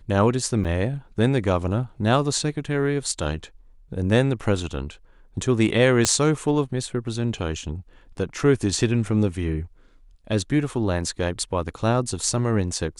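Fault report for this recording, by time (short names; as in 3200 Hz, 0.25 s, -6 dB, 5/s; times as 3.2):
0.64–0.65 gap 7.2 ms
6.05 pop -4 dBFS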